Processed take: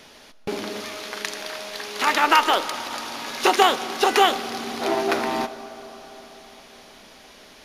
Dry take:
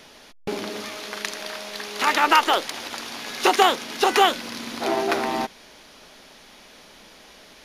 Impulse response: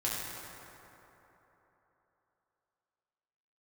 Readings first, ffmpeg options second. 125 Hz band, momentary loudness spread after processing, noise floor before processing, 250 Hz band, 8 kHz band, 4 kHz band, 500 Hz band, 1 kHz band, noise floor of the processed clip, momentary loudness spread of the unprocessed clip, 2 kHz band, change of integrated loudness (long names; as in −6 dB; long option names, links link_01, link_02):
can't be measured, 16 LU, −49 dBFS, +0.5 dB, 0.0 dB, 0.0 dB, +0.5 dB, +0.5 dB, −48 dBFS, 15 LU, 0.0 dB, +0.5 dB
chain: -filter_complex "[0:a]asplit=2[link_01][link_02];[1:a]atrim=start_sample=2205,asetrate=32634,aresample=44100[link_03];[link_02][link_03]afir=irnorm=-1:irlink=0,volume=-18.5dB[link_04];[link_01][link_04]amix=inputs=2:normalize=0,volume=-1dB"